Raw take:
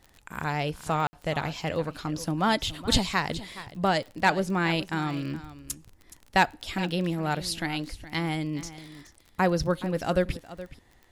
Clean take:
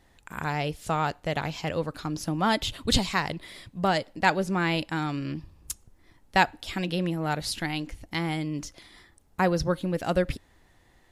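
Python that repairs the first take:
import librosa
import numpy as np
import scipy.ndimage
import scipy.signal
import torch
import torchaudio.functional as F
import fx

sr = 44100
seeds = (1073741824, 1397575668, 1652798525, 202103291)

y = fx.fix_declip(x, sr, threshold_db=-9.5)
y = fx.fix_declick_ar(y, sr, threshold=6.5)
y = fx.fix_ambience(y, sr, seeds[0], print_start_s=5.83, print_end_s=6.33, start_s=1.07, end_s=1.13)
y = fx.fix_echo_inverse(y, sr, delay_ms=421, level_db=-15.5)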